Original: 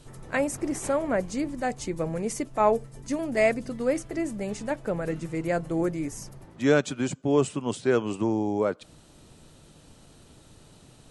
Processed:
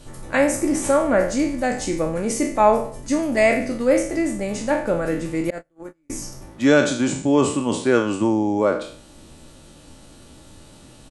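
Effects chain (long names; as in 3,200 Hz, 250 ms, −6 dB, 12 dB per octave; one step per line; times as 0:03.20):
peak hold with a decay on every bin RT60 0.52 s
0:05.50–0:06.10: noise gate −21 dBFS, range −43 dB
comb filter 3.5 ms, depth 34%
level +5 dB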